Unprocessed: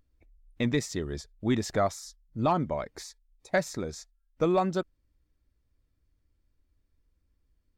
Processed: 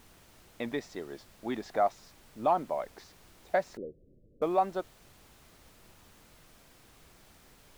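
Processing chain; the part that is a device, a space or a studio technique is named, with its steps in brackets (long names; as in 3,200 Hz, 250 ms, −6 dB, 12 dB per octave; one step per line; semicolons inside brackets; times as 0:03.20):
horn gramophone (band-pass filter 270–3,700 Hz; parametric band 750 Hz +9 dB; tape wow and flutter; pink noise bed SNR 22 dB)
0:03.77–0:04.42: Butterworth low-pass 560 Hz 72 dB per octave
level −6 dB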